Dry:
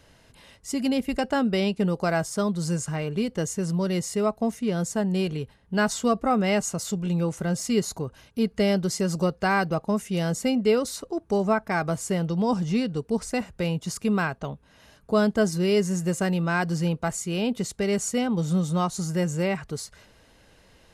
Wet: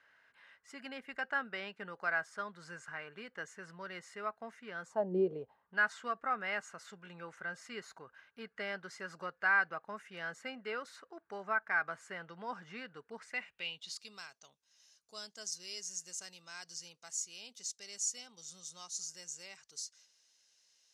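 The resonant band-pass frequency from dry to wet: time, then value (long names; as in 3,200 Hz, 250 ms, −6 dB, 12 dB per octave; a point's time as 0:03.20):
resonant band-pass, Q 3.4
0:04.82 1,600 Hz
0:05.17 330 Hz
0:05.78 1,600 Hz
0:13.14 1,600 Hz
0:14.26 5,900 Hz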